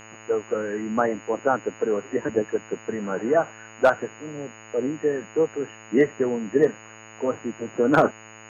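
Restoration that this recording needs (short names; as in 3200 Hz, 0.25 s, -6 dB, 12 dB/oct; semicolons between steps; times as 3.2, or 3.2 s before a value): clip repair -8 dBFS; de-hum 109.8 Hz, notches 27; notch 6700 Hz, Q 30; expander -37 dBFS, range -21 dB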